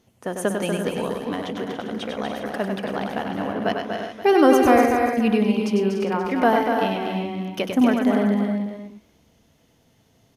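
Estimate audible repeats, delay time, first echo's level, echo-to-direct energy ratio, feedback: 9, 98 ms, -5.0 dB, -0.5 dB, no regular repeats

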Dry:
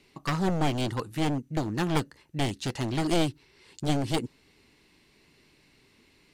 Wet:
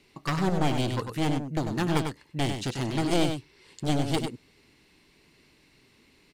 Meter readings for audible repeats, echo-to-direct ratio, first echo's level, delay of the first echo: 1, -6.5 dB, -6.5 dB, 98 ms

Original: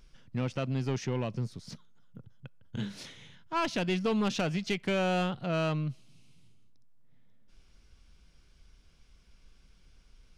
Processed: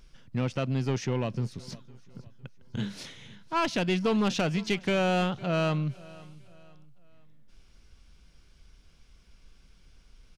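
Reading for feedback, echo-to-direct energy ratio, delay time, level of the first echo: 39%, -21.0 dB, 507 ms, -21.5 dB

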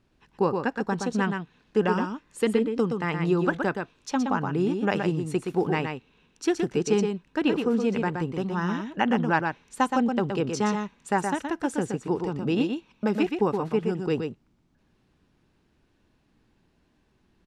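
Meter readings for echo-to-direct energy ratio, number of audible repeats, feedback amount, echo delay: -5.5 dB, 1, no regular repeats, 121 ms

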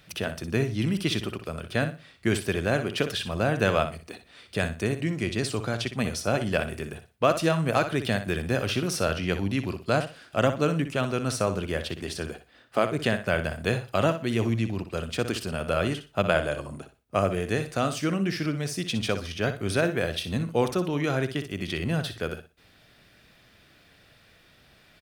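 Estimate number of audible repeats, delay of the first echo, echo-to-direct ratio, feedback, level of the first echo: 2, 61 ms, -10.5 dB, 23%, -10.5 dB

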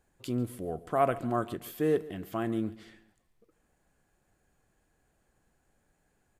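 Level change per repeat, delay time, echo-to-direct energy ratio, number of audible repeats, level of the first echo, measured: -8.0 dB, 141 ms, -18.5 dB, 3, -19.0 dB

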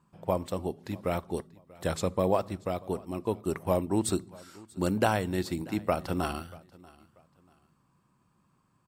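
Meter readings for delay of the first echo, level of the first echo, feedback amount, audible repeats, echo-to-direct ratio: 637 ms, -23.0 dB, 29%, 2, -22.5 dB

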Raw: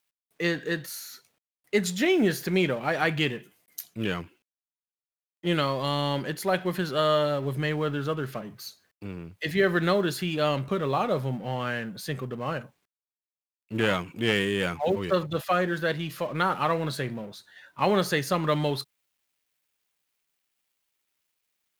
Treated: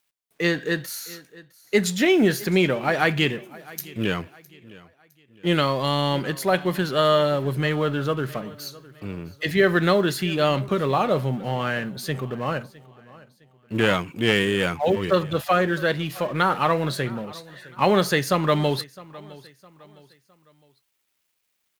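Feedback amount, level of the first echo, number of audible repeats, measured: 38%, -21.0 dB, 2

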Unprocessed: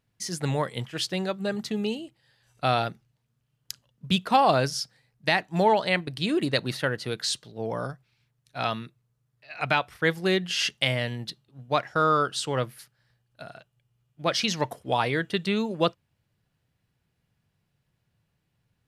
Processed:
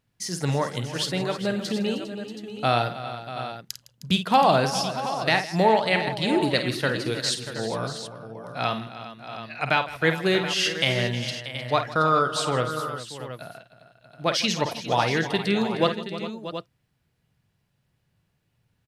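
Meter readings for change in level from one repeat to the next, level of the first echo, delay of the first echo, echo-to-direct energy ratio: no regular repeats, -9.5 dB, 50 ms, -5.0 dB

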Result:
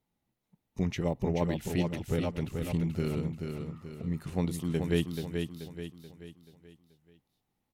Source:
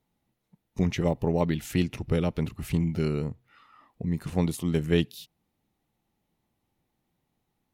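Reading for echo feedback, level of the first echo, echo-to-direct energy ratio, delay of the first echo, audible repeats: 44%, -5.5 dB, -4.5 dB, 432 ms, 5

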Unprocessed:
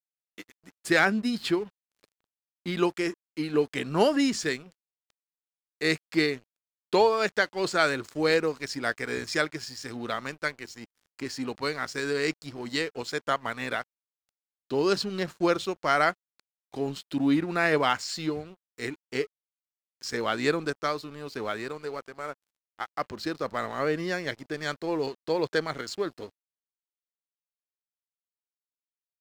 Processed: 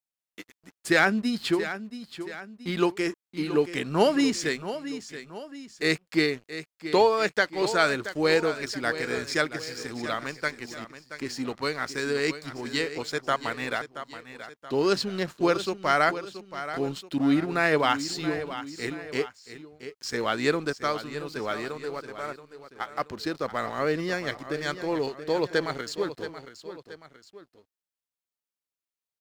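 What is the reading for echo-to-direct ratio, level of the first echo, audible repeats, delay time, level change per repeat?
-11.0 dB, -12.0 dB, 2, 677 ms, -6.5 dB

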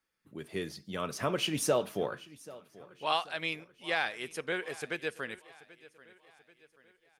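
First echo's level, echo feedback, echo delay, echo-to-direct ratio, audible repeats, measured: -20.0 dB, 48%, 785 ms, -19.0 dB, 3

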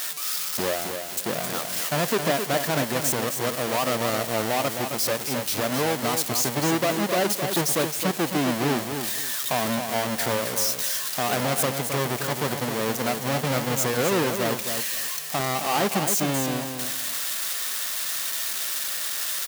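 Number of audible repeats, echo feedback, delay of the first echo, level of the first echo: 3, 20%, 265 ms, -7.0 dB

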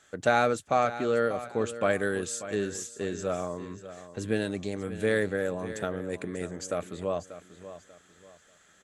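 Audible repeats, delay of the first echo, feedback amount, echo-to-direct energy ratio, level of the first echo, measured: 3, 589 ms, 31%, -13.0 dB, -13.5 dB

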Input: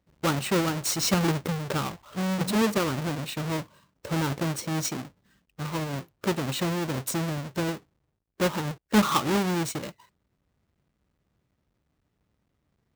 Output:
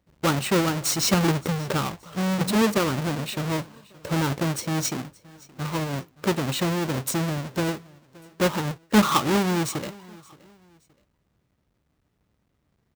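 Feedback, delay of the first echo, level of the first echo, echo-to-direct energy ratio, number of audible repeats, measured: 33%, 572 ms, -23.0 dB, -22.5 dB, 2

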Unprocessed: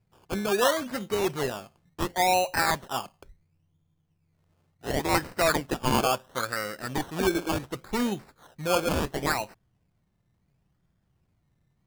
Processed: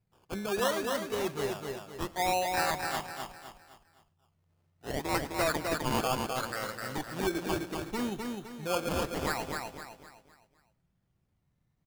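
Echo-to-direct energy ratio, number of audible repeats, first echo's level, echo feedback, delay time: -3.0 dB, 7, -22.0 dB, no regular repeats, 109 ms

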